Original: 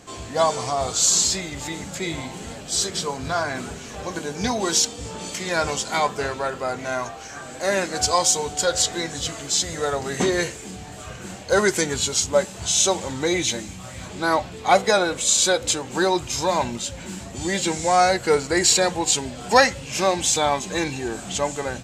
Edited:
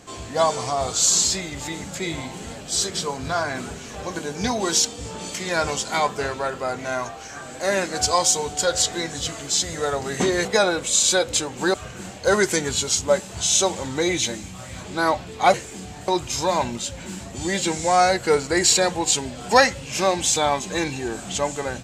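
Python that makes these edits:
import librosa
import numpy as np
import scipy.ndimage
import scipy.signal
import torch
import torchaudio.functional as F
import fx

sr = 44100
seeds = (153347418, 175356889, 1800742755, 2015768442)

y = fx.edit(x, sr, fx.swap(start_s=10.45, length_s=0.54, other_s=14.79, other_length_s=1.29), tone=tone)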